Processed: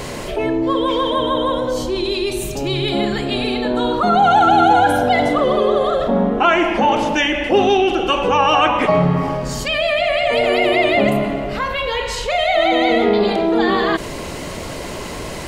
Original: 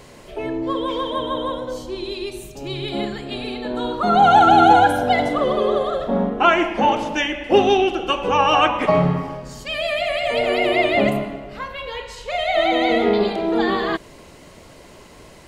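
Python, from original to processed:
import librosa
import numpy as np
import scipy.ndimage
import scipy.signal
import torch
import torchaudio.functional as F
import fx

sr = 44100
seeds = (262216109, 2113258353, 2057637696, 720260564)

y = fx.high_shelf(x, sr, hz=7200.0, db=-11.0, at=(9.68, 10.33))
y = fx.env_flatten(y, sr, amount_pct=50)
y = F.gain(torch.from_numpy(y), -1.5).numpy()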